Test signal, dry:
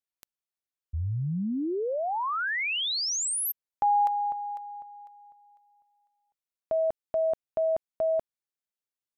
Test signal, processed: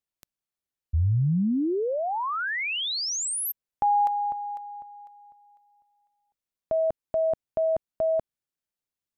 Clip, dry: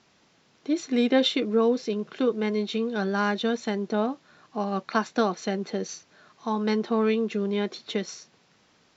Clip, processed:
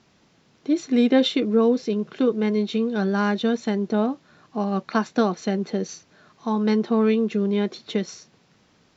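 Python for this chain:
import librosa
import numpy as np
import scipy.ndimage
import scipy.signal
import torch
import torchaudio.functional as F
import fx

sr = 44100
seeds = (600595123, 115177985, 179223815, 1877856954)

y = fx.low_shelf(x, sr, hz=330.0, db=8.0)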